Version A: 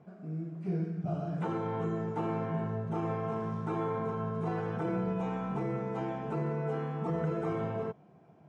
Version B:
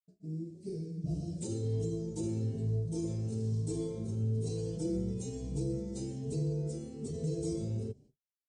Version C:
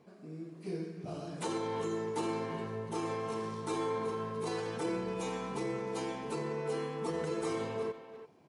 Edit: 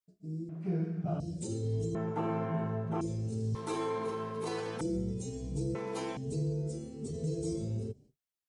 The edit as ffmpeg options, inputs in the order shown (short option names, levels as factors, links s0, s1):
-filter_complex "[0:a]asplit=2[s0][s1];[2:a]asplit=2[s2][s3];[1:a]asplit=5[s4][s5][s6][s7][s8];[s4]atrim=end=0.492[s9];[s0]atrim=start=0.488:end=1.202[s10];[s5]atrim=start=1.198:end=1.952[s11];[s1]atrim=start=1.948:end=3.012[s12];[s6]atrim=start=3.008:end=3.552[s13];[s2]atrim=start=3.548:end=4.812[s14];[s7]atrim=start=4.808:end=5.752[s15];[s3]atrim=start=5.748:end=6.172[s16];[s8]atrim=start=6.168[s17];[s9][s10]acrossfade=d=0.004:c1=hsin:c2=hsin[s18];[s18][s11]acrossfade=d=0.004:c1=hsin:c2=hsin[s19];[s19][s12]acrossfade=d=0.004:c1=hsin:c2=hsin[s20];[s20][s13]acrossfade=d=0.004:c1=hsin:c2=hsin[s21];[s21][s14]acrossfade=d=0.004:c1=hsin:c2=hsin[s22];[s22][s15]acrossfade=d=0.004:c1=hsin:c2=hsin[s23];[s23][s16]acrossfade=d=0.004:c1=hsin:c2=hsin[s24];[s24][s17]acrossfade=d=0.004:c1=hsin:c2=hsin"